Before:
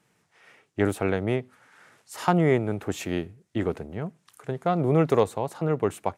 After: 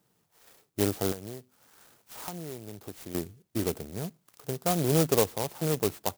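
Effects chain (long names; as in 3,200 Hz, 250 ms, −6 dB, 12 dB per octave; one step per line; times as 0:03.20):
0:01.12–0:03.15: downward compressor 4 to 1, threshold −36 dBFS, peak gain reduction 17 dB
converter with an unsteady clock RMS 0.14 ms
level −3 dB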